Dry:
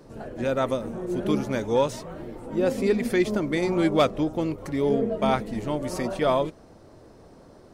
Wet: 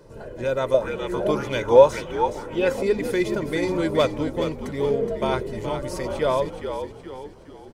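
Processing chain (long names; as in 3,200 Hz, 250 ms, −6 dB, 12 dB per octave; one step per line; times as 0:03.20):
comb filter 2 ms, depth 51%
echo with shifted repeats 420 ms, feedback 43%, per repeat −62 Hz, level −8 dB
0:00.74–0:02.83: auto-filter bell 1.9 Hz 630–3,100 Hz +15 dB
level −1 dB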